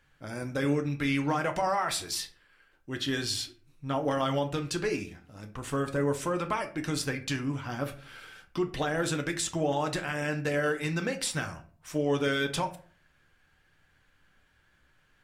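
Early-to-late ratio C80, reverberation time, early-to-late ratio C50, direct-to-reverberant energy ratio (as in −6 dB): 18.5 dB, 0.45 s, 14.0 dB, 5.0 dB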